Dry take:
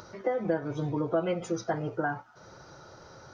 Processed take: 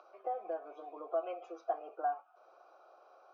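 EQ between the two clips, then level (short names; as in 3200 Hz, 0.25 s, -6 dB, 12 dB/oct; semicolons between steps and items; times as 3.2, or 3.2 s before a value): vowel filter a; elliptic band-pass 340–7000 Hz, stop band 40 dB; air absorption 52 m; +2.0 dB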